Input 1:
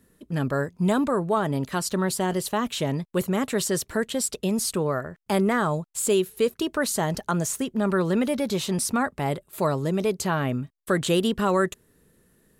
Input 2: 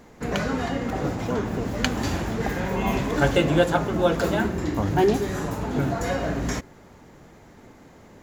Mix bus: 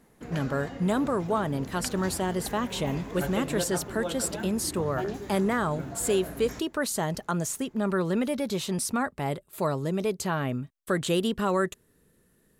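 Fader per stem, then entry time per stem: -3.5, -13.0 dB; 0.00, 0.00 s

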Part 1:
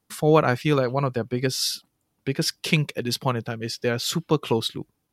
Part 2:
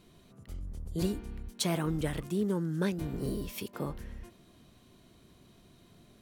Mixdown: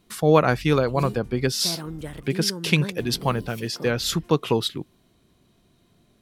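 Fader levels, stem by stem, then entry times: +1.0, -2.5 dB; 0.00, 0.00 s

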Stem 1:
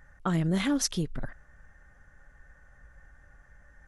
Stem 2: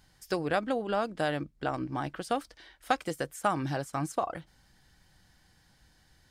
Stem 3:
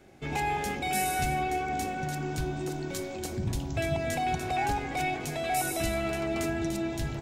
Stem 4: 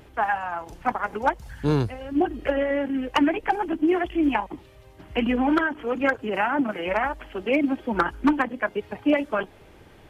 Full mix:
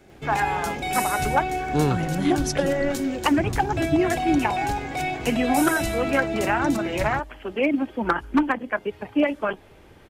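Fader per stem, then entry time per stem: -1.0, -17.5, +3.0, 0.0 dB; 1.65, 0.00, 0.00, 0.10 s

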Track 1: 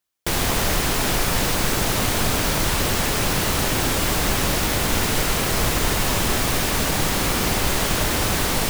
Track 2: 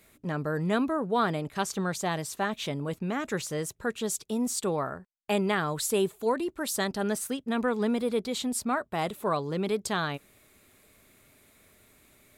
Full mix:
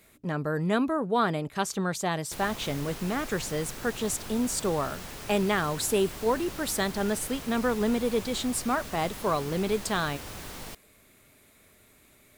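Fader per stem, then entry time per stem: -19.5, +1.0 dB; 2.05, 0.00 s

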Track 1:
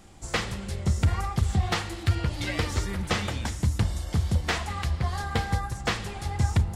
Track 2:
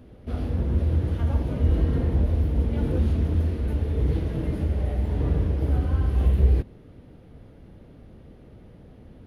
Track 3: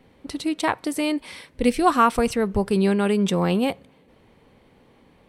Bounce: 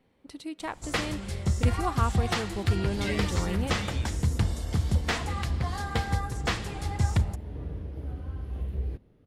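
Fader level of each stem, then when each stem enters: -1.5, -13.0, -12.5 dB; 0.60, 2.35, 0.00 s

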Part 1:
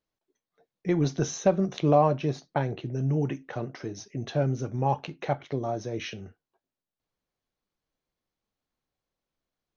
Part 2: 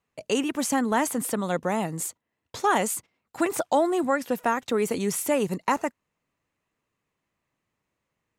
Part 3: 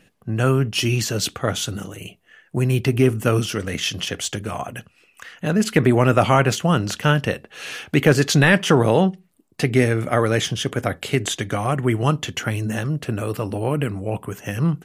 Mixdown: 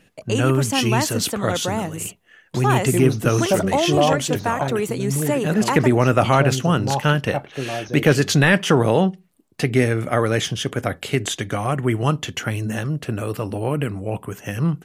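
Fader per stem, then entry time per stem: +2.5, +1.5, -0.5 dB; 2.05, 0.00, 0.00 s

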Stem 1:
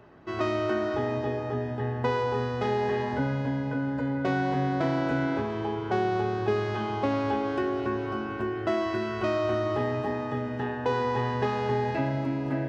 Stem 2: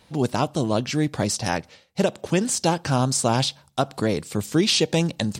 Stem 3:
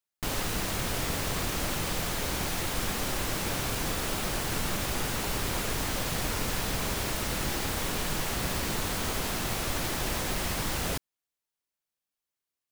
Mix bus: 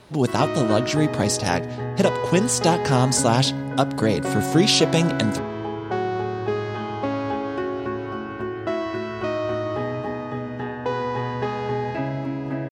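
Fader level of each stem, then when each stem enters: +1.5 dB, +2.0 dB, off; 0.00 s, 0.00 s, off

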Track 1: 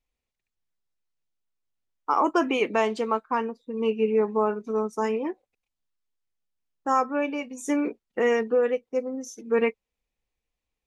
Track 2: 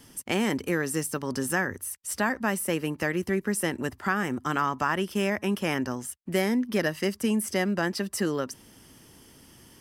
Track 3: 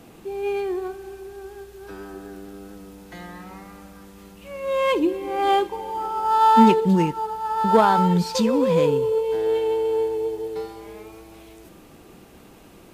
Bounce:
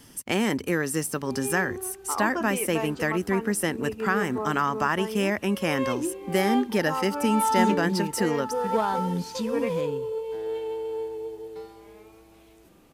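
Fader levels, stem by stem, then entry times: -8.0, +1.5, -9.0 dB; 0.00, 0.00, 1.00 s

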